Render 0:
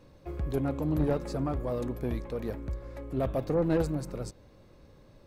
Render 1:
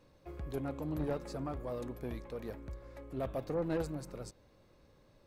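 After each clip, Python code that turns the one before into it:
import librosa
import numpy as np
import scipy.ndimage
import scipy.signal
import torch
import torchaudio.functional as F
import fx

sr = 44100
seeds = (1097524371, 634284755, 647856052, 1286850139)

y = fx.low_shelf(x, sr, hz=430.0, db=-5.0)
y = y * 10.0 ** (-5.0 / 20.0)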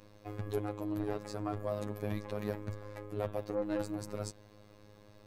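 y = fx.rider(x, sr, range_db=4, speed_s=0.5)
y = fx.robotise(y, sr, hz=104.0)
y = y * 10.0 ** (5.0 / 20.0)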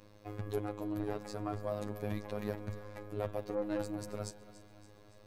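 y = fx.echo_feedback(x, sr, ms=283, feedback_pct=55, wet_db=-16.0)
y = y * 10.0 ** (-1.0 / 20.0)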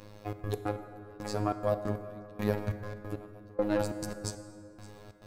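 y = fx.step_gate(x, sr, bpm=138, pattern='xxx.x.x....', floor_db=-24.0, edge_ms=4.5)
y = fx.rev_plate(y, sr, seeds[0], rt60_s=2.6, hf_ratio=0.45, predelay_ms=0, drr_db=9.0)
y = y * 10.0 ** (8.0 / 20.0)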